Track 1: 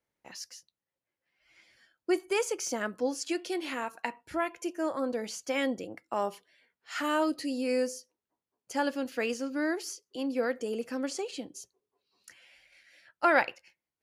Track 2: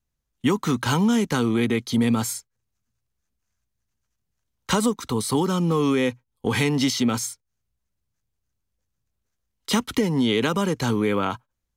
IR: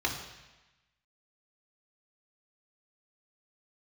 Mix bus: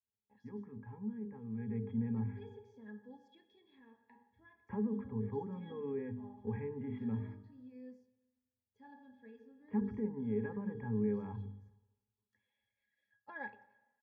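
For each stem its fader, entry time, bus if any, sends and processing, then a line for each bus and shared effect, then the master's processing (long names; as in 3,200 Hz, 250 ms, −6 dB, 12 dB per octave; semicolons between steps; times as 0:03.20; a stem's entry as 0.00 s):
−5.5 dB, 0.05 s, send −18.5 dB, automatic ducking −11 dB, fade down 1.70 s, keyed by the second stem
0:01.40 −17.5 dB → 0:01.77 −8.5 dB, 0.00 s, send −19.5 dB, Butterworth low-pass 2,600 Hz 72 dB per octave; mains-hum notches 50/100/150/200/250/300/350/400/450 Hz; level that may fall only so fast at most 71 dB per second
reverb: on, RT60 1.1 s, pre-delay 3 ms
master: low-pass filter 3,500 Hz 6 dB per octave; resonances in every octave G#, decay 0.11 s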